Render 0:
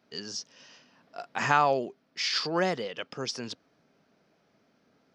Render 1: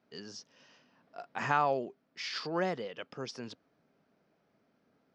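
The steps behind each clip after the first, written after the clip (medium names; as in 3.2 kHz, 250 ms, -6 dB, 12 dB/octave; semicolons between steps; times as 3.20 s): treble shelf 3.5 kHz -9.5 dB; trim -4.5 dB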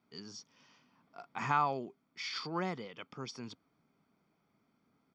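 comb 0.9 ms, depth 53%; trim -3 dB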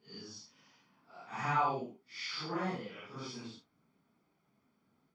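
phase randomisation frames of 200 ms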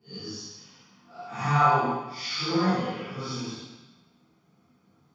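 reverberation RT60 1.1 s, pre-delay 3 ms, DRR -10 dB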